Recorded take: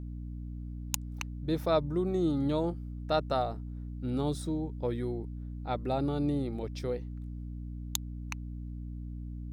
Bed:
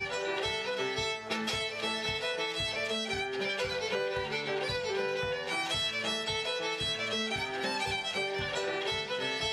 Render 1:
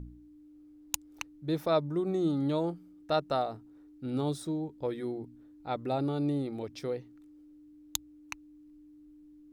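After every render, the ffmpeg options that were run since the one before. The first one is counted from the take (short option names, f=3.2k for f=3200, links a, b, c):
-af "bandreject=f=60:t=h:w=4,bandreject=f=120:t=h:w=4,bandreject=f=180:t=h:w=4,bandreject=f=240:t=h:w=4"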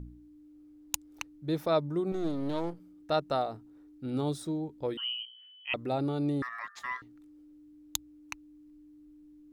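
-filter_complex "[0:a]asettb=1/sr,asplit=3[a][b][c];[a]atrim=end=2.124[d];[b]atrim=start=2.12:end=2.8,asetpts=PTS-STARTPTS,afade=t=in:d=0.004:c=qsin,afade=t=out:st=0.676:d=0.004:c=qsin,aeval=exprs='if(lt(val(0),0),0.251*val(0),val(0))':c=same[e];[c]atrim=start=2.796[f];[d][e]acrossfade=d=0.004:c1=hsin:c2=qsin[g];[g][f]acrossfade=d=0.004:c1=qsin:c2=hsin,asettb=1/sr,asplit=3[h][i][j];[h]atrim=end=4.974[k];[i]atrim=start=4.97:end=5.74,asetpts=PTS-STARTPTS,afade=t=in:d=0.004:c=qsin,afade=t=out:st=0.766:d=0.004:c=qsin,lowpass=f=2.8k:t=q:w=0.5098,lowpass=f=2.8k:t=q:w=0.6013,lowpass=f=2.8k:t=q:w=0.9,lowpass=f=2.8k:t=q:w=2.563,afreqshift=-3300[l];[j]atrim=start=5.736[m];[k][l]acrossfade=d=0.004:c1=hsin:c2=qsin[n];[n][m]acrossfade=d=0.004:c1=qsin:c2=hsin,asettb=1/sr,asplit=3[o][p][q];[o]atrim=end=6.424[r];[p]atrim=start=6.42:end=7.02,asetpts=PTS-STARTPTS,afade=t=in:d=0.004:c=qsin,afade=t=out:st=0.596:d=0.004:c=qsin,aeval=exprs='val(0)*sin(2*PI*1500*n/s)':c=same[s];[q]atrim=start=7.016[t];[r][s]acrossfade=d=0.004:c1=hsin:c2=qsin[u];[u][t]acrossfade=d=0.004:c1=qsin:c2=hsin"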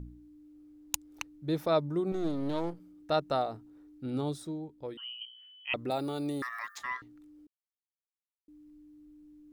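-filter_complex "[0:a]asettb=1/sr,asplit=3[a][b][c];[a]atrim=end=5.904[d];[b]atrim=start=5.9:end=6.78,asetpts=PTS-STARTPTS,afade=t=in:d=0.004:c=qsin,afade=t=out:st=0.876:d=0.004:c=qsin,aemphasis=mode=production:type=bsi[e];[c]atrim=start=6.776[f];[d][e]acrossfade=d=0.004:c1=hsin:c2=qsin[g];[g][f]acrossfade=d=0.004:c1=qsin:c2=hsin,asplit=4[h][i][j][k];[h]atrim=end=5.21,asetpts=PTS-STARTPTS,afade=t=out:st=4.03:d=1.18:c=qua:silence=0.398107[l];[i]atrim=start=5.21:end=7.47,asetpts=PTS-STARTPTS,afade=t=in:d=0.004:c=hsin:silence=0.398107,afade=t=out:st=2.256:d=0.004:c=hsin[m];[j]atrim=start=7.47:end=8.48,asetpts=PTS-STARTPTS,volume=0[n];[k]atrim=start=8.48,asetpts=PTS-STARTPTS,afade=t=in:d=0.004:c=hsin[o];[l][m][n][o]concat=n=4:v=0:a=1"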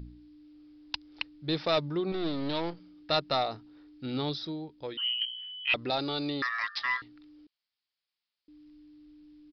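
-af "crystalizer=i=9.5:c=0,aresample=11025,asoftclip=type=tanh:threshold=-20.5dB,aresample=44100"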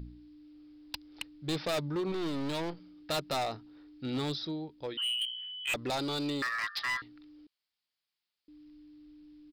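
-af "asoftclip=type=hard:threshold=-29dB"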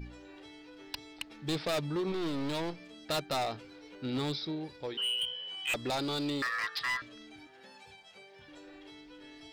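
-filter_complex "[1:a]volume=-21.5dB[a];[0:a][a]amix=inputs=2:normalize=0"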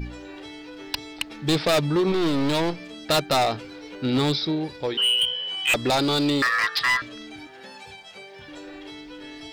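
-af "volume=11.5dB"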